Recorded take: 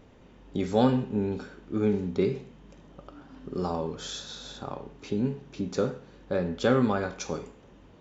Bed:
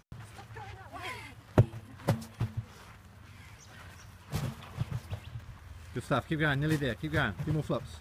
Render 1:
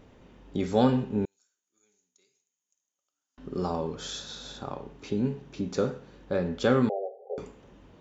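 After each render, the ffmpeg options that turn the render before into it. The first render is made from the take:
ffmpeg -i in.wav -filter_complex "[0:a]asettb=1/sr,asplit=3[link_01][link_02][link_03];[link_01]atrim=end=1.254[link_04];[link_02]atrim=start=1.25:end=3.38,asetpts=PTS-STARTPTS,afade=type=in:duration=0.004:curve=qsin,afade=type=out:start_time=2.126:duration=0.004:curve=qsin,bandpass=frequency=6700:width_type=q:width=14[link_05];[link_03]atrim=start=3.376[link_06];[link_04][link_05]acrossfade=duration=0.004:curve1=hsin:curve2=qsin[link_07];[link_07][link_06]acrossfade=duration=0.004:curve1=qsin:curve2=hsin,asettb=1/sr,asplit=3[link_08][link_09][link_10];[link_08]atrim=end=6.894[link_11];[link_09]atrim=start=6.89:end=7.38,asetpts=PTS-STARTPTS,afade=type=in:duration=0.004:curve=qsin,afade=type=out:start_time=0.486:duration=0.004:curve=qsin,asuperpass=centerf=560:order=20:qfactor=1.4[link_12];[link_10]atrim=start=7.376[link_13];[link_11][link_12]acrossfade=duration=0.004:curve1=hsin:curve2=qsin[link_14];[link_14][link_13]acrossfade=duration=0.004:curve1=qsin:curve2=hsin" out.wav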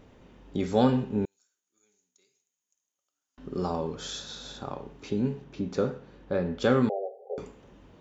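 ffmpeg -i in.wav -filter_complex "[0:a]asettb=1/sr,asplit=3[link_01][link_02][link_03];[link_01]atrim=end=5.444[link_04];[link_02]atrim=start=5.44:end=6.62,asetpts=PTS-STARTPTS,afade=type=in:duration=0.004:curve=qsin,afade=type=out:start_time=1.176:duration=0.004:curve=qsin,highshelf=frequency=6300:gain=-12[link_05];[link_03]atrim=start=6.616[link_06];[link_04][link_05]acrossfade=duration=0.004:curve1=hsin:curve2=qsin[link_07];[link_07][link_06]acrossfade=duration=0.004:curve1=qsin:curve2=hsin" out.wav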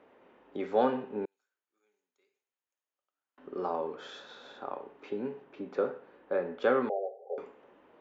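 ffmpeg -i in.wav -filter_complex "[0:a]highpass=frequency=120:poles=1,acrossover=split=310 2700:gain=0.0794 1 0.0631[link_01][link_02][link_03];[link_01][link_02][link_03]amix=inputs=3:normalize=0" out.wav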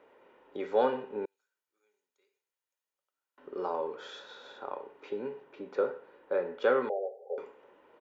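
ffmpeg -i in.wav -af "lowshelf=frequency=200:gain=-7.5,aecho=1:1:2.1:0.33" out.wav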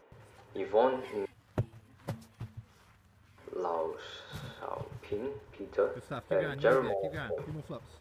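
ffmpeg -i in.wav -i bed.wav -filter_complex "[1:a]volume=-10dB[link_01];[0:a][link_01]amix=inputs=2:normalize=0" out.wav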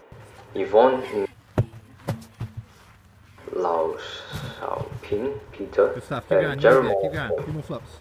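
ffmpeg -i in.wav -af "volume=10.5dB" out.wav

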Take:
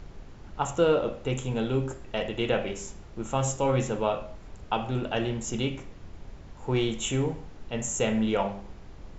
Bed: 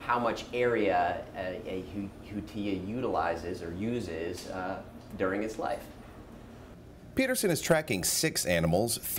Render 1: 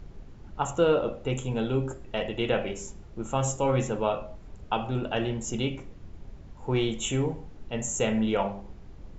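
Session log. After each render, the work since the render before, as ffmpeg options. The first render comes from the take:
ffmpeg -i in.wav -af "afftdn=noise_reduction=6:noise_floor=-47" out.wav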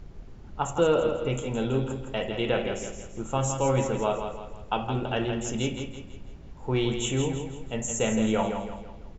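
ffmpeg -i in.wav -af "aecho=1:1:165|330|495|660|825:0.447|0.188|0.0788|0.0331|0.0139" out.wav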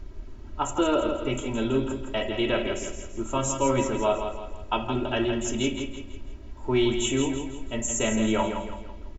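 ffmpeg -i in.wav -af "bandreject=frequency=690:width=13,aecho=1:1:3.1:0.9" out.wav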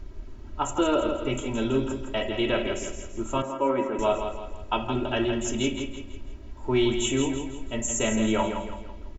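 ffmpeg -i in.wav -filter_complex "[0:a]asettb=1/sr,asplit=3[link_01][link_02][link_03];[link_01]atrim=end=1.554[link_04];[link_02]atrim=start=1.55:end=2.07,asetpts=PTS-STARTPTS,afade=type=in:duration=0.004:curve=qsin,afade=type=out:start_time=0.516:duration=0.004:curve=qsin,equalizer=frequency=5600:width=4:gain=6.5[link_05];[link_03]atrim=start=2.066[link_06];[link_04][link_05]acrossfade=duration=0.004:curve1=hsin:curve2=qsin[link_07];[link_07][link_06]acrossfade=duration=0.004:curve1=qsin:curve2=hsin,asettb=1/sr,asplit=3[link_08][link_09][link_10];[link_08]atrim=end=3.424[link_11];[link_09]atrim=start=3.42:end=3.99,asetpts=PTS-STARTPTS,afade=type=in:duration=0.004:curve=qsin,afade=type=out:start_time=0.566:duration=0.004:curve=qsin,acrossover=split=200 2400:gain=0.0708 1 0.0631[link_12][link_13][link_14];[link_12][link_13][link_14]amix=inputs=3:normalize=0[link_15];[link_10]atrim=start=3.986[link_16];[link_11][link_15]acrossfade=duration=0.004:curve1=hsin:curve2=qsin[link_17];[link_17][link_16]acrossfade=duration=0.004:curve1=qsin:curve2=hsin" out.wav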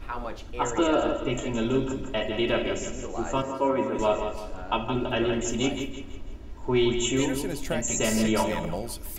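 ffmpeg -i in.wav -i bed.wav -filter_complex "[1:a]volume=-6.5dB[link_01];[0:a][link_01]amix=inputs=2:normalize=0" out.wav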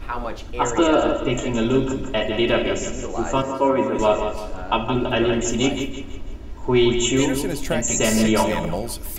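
ffmpeg -i in.wav -af "volume=6dB" out.wav

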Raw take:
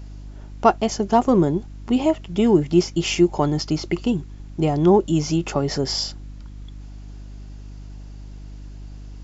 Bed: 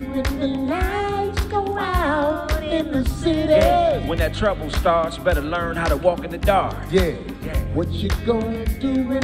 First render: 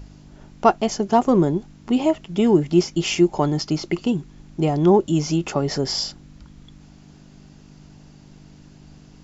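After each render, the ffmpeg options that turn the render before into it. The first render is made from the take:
ffmpeg -i in.wav -af "bandreject=frequency=50:width_type=h:width=4,bandreject=frequency=100:width_type=h:width=4" out.wav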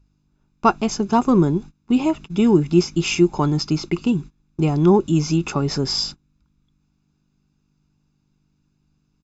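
ffmpeg -i in.wav -af "agate=range=-23dB:threshold=-33dB:ratio=16:detection=peak,aecho=1:1:0.8:0.54" out.wav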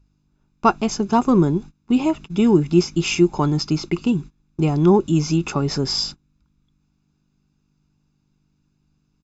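ffmpeg -i in.wav -af anull out.wav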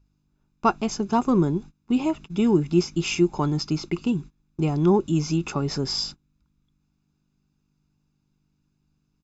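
ffmpeg -i in.wav -af "volume=-4.5dB" out.wav

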